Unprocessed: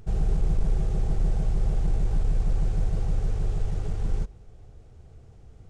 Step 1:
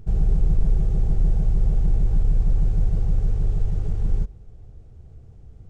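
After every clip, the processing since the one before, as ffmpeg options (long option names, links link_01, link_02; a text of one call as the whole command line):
ffmpeg -i in.wav -af "lowshelf=frequency=390:gain=10,volume=-5dB" out.wav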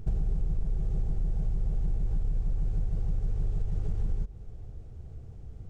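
ffmpeg -i in.wav -af "acompressor=threshold=-25dB:ratio=10,volume=1dB" out.wav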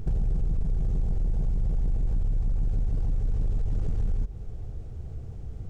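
ffmpeg -i in.wav -af "asoftclip=type=tanh:threshold=-26.5dB,volume=6.5dB" out.wav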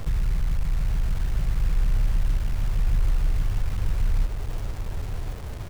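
ffmpeg -i in.wav -filter_complex "[0:a]acrossover=split=160[link_01][link_02];[link_02]acompressor=threshold=-49dB:ratio=6[link_03];[link_01][link_03]amix=inputs=2:normalize=0,acrusher=bits=6:mix=0:aa=0.000001,aecho=1:1:1085:0.447,volume=2dB" out.wav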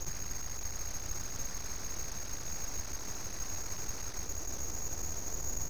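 ffmpeg -i in.wav -af "afftfilt=real='re*lt(hypot(re,im),0.398)':imag='im*lt(hypot(re,im),0.398)':win_size=1024:overlap=0.75,lowpass=frequency=2900:width_type=q:width=0.5098,lowpass=frequency=2900:width_type=q:width=0.6013,lowpass=frequency=2900:width_type=q:width=0.9,lowpass=frequency=2900:width_type=q:width=2.563,afreqshift=-3400,aeval=exprs='abs(val(0))':channel_layout=same" out.wav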